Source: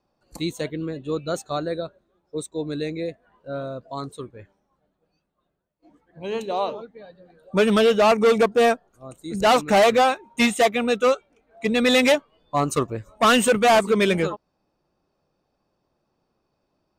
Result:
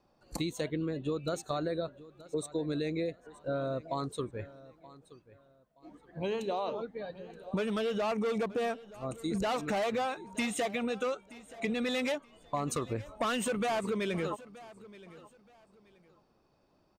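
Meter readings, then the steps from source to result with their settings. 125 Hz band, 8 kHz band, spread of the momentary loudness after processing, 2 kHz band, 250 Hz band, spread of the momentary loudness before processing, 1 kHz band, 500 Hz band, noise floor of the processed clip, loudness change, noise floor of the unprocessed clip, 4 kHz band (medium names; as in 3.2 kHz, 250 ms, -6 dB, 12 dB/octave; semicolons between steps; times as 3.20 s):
-7.0 dB, -11.0 dB, 14 LU, -14.0 dB, -10.0 dB, 17 LU, -14.0 dB, -12.5 dB, -70 dBFS, -13.5 dB, -74 dBFS, -14.0 dB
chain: treble shelf 8 kHz -4.5 dB; peak limiter -19.5 dBFS, peak gain reduction 8.5 dB; compression 5:1, threshold -34 dBFS, peak gain reduction 11 dB; on a send: feedback delay 925 ms, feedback 27%, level -19 dB; on the sum: endings held to a fixed fall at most 520 dB/s; trim +3 dB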